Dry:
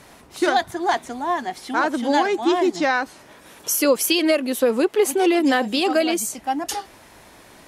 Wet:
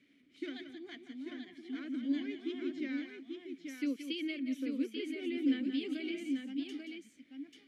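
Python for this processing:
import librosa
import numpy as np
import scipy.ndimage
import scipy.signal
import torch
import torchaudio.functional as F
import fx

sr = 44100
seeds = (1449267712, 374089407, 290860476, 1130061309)

y = fx.vowel_filter(x, sr, vowel='i')
y = fx.echo_multitap(y, sr, ms=(176, 184, 839), db=(-10.0, -17.0, -5.5))
y = y * 10.0 ** (-8.0 / 20.0)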